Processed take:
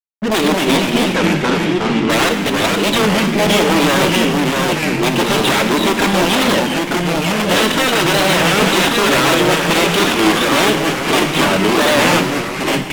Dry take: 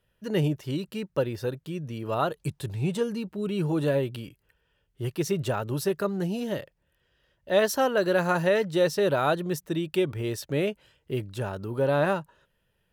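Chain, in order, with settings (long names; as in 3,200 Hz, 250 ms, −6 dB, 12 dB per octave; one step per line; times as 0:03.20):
output level in coarse steps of 10 dB
dynamic equaliser 3,100 Hz, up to +7 dB, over −53 dBFS, Q 1
wrap-around overflow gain 25.5 dB
brick-wall band-pass 180–4,000 Hz
fuzz pedal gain 46 dB, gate −53 dBFS
0:00.77–0:02.10: high-frequency loss of the air 66 metres
delay with pitch and tempo change per echo 188 ms, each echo −2 semitones, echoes 3
on a send at −6.5 dB: convolution reverb, pre-delay 3 ms
on the sum: wow of a warped record 33 1/3 rpm, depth 160 cents
level −1 dB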